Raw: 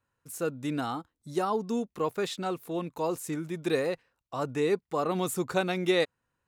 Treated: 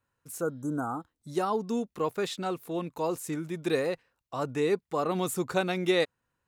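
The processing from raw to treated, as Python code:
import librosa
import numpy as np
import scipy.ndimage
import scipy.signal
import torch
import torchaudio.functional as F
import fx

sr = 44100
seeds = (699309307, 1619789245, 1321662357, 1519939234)

y = fx.spec_repair(x, sr, seeds[0], start_s=0.43, length_s=0.57, low_hz=1600.0, high_hz=5800.0, source='after')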